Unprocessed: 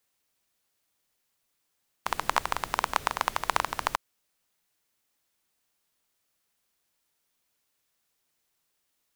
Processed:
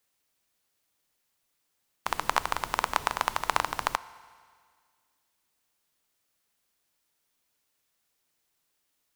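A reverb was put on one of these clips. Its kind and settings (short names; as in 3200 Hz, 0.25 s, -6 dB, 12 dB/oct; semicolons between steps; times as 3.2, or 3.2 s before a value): FDN reverb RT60 1.9 s, low-frequency decay 1×, high-frequency decay 1×, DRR 16 dB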